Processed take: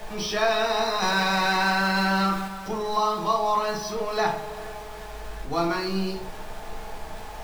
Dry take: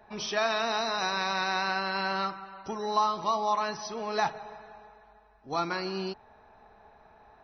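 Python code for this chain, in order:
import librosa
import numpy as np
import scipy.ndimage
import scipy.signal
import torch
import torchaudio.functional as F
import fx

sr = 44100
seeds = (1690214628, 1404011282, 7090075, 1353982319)

y = x + 0.5 * 10.0 ** (-39.0 / 20.0) * np.sign(x)
y = fx.low_shelf(y, sr, hz=65.0, db=10.5)
y = fx.hum_notches(y, sr, base_hz=60, count=7)
y = fx.room_shoebox(y, sr, seeds[0], volume_m3=35.0, walls='mixed', distance_m=0.59)
y = fx.leveller(y, sr, passes=1, at=(1.02, 2.48))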